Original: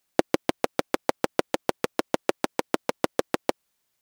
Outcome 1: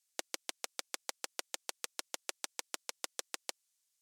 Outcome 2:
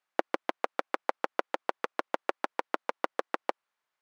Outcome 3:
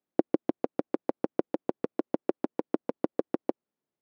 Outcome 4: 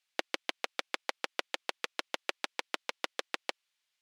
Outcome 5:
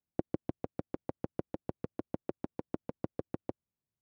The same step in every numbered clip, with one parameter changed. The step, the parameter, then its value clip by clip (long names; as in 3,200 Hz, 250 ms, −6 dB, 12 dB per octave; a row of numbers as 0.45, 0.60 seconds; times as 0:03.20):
resonant band-pass, frequency: 7,500, 1,200, 290, 3,000, 100 Hertz